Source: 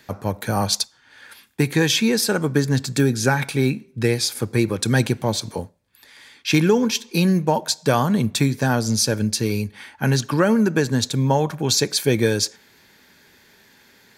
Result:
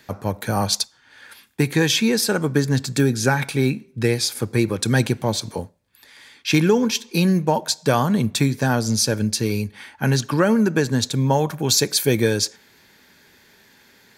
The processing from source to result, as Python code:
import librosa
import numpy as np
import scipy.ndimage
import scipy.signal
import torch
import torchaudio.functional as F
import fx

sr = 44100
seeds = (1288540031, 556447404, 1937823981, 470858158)

y = fx.high_shelf(x, sr, hz=12000.0, db=12.0, at=(11.32, 12.22))